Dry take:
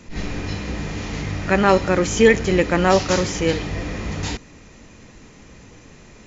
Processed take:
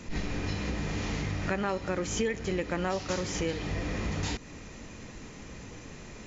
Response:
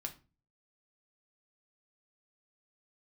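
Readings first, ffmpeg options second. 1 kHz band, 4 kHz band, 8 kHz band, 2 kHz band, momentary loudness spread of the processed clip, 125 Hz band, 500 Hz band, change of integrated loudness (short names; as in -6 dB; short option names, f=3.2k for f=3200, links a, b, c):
-13.5 dB, -10.0 dB, n/a, -12.5 dB, 15 LU, -8.5 dB, -14.5 dB, -12.5 dB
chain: -af "acompressor=threshold=-29dB:ratio=5"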